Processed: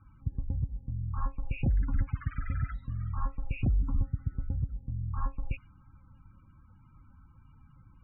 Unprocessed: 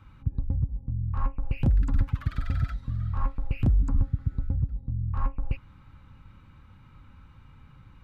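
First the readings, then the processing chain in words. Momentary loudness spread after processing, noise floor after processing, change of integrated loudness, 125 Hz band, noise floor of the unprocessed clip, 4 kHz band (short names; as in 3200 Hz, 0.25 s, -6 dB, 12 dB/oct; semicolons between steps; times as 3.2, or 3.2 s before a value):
7 LU, -59 dBFS, -5.0 dB, -5.0 dB, -53 dBFS, n/a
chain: dynamic EQ 2300 Hz, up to +7 dB, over -58 dBFS, Q 0.86; loudest bins only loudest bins 32; low-pass opened by the level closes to 2500 Hz; gain -5 dB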